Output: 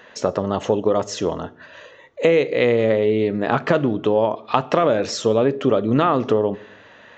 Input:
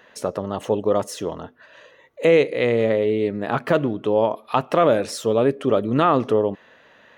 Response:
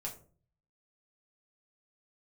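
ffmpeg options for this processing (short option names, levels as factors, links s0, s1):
-filter_complex "[0:a]acompressor=threshold=0.112:ratio=4,asplit=2[s0][s1];[1:a]atrim=start_sample=2205,asetrate=26019,aresample=44100[s2];[s1][s2]afir=irnorm=-1:irlink=0,volume=0.15[s3];[s0][s3]amix=inputs=2:normalize=0,aresample=16000,aresample=44100,volume=1.68"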